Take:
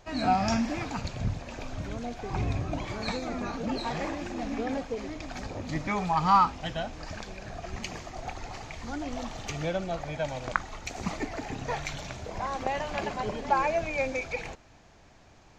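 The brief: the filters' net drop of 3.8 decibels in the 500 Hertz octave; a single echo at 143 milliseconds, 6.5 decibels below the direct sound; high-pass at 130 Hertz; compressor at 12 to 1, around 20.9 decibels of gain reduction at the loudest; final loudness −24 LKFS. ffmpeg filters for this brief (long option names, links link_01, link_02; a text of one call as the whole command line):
ffmpeg -i in.wav -af "highpass=130,equalizer=frequency=500:width_type=o:gain=-5,acompressor=threshold=-39dB:ratio=12,aecho=1:1:143:0.473,volume=18.5dB" out.wav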